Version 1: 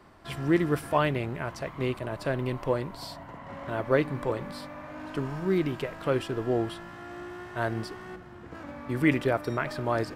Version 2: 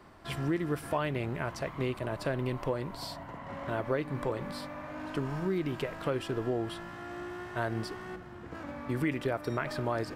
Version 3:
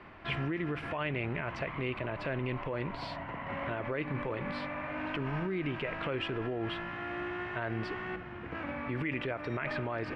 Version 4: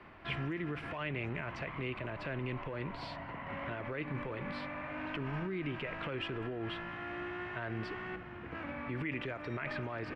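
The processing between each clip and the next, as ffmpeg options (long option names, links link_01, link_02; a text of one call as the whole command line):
ffmpeg -i in.wav -af "acompressor=threshold=-28dB:ratio=4" out.wav
ffmpeg -i in.wav -af "alimiter=level_in=5dB:limit=-24dB:level=0:latency=1:release=44,volume=-5dB,lowpass=frequency=2500:width_type=q:width=2.6,volume=2dB" out.wav
ffmpeg -i in.wav -filter_complex "[0:a]acrossover=split=370|1000[link_01][link_02][link_03];[link_02]asoftclip=type=tanh:threshold=-39.5dB[link_04];[link_01][link_04][link_03]amix=inputs=3:normalize=0,asplit=2[link_05][link_06];[link_06]adelay=200,highpass=300,lowpass=3400,asoftclip=type=hard:threshold=-30.5dB,volume=-23dB[link_07];[link_05][link_07]amix=inputs=2:normalize=0,volume=-3dB" out.wav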